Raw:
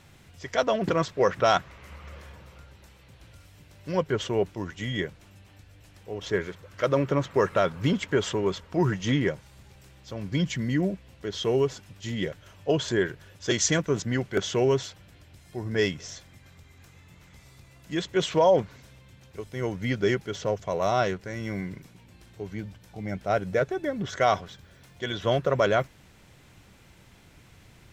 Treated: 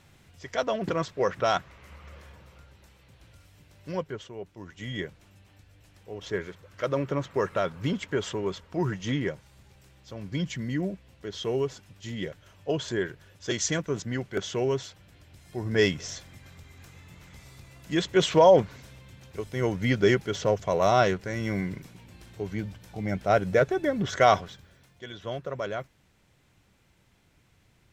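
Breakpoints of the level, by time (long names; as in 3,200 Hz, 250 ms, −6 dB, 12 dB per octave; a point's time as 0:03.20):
0:03.91 −3.5 dB
0:04.34 −15.5 dB
0:04.91 −4 dB
0:14.84 −4 dB
0:15.92 +3 dB
0:24.35 +3 dB
0:25.06 −10 dB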